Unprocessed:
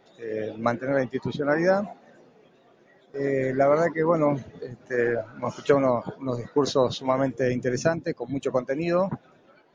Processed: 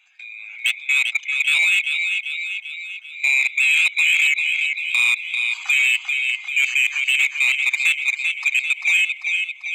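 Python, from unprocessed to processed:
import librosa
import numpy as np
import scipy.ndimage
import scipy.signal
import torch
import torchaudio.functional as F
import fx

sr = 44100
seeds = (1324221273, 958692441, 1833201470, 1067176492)

p1 = fx.band_swap(x, sr, width_hz=2000)
p2 = np.clip(10.0 ** (17.0 / 20.0) * p1, -1.0, 1.0) / 10.0 ** (17.0 / 20.0)
p3 = p1 + (p2 * 10.0 ** (-7.0 / 20.0))
p4 = fx.brickwall_highpass(p3, sr, low_hz=700.0)
p5 = fx.level_steps(p4, sr, step_db=22)
p6 = p5 + fx.echo_feedback(p5, sr, ms=393, feedback_pct=55, wet_db=-6.5, dry=0)
p7 = 10.0 ** (-18.0 / 20.0) * np.tanh(p6 / 10.0 ** (-18.0 / 20.0))
y = p7 * 10.0 ** (7.5 / 20.0)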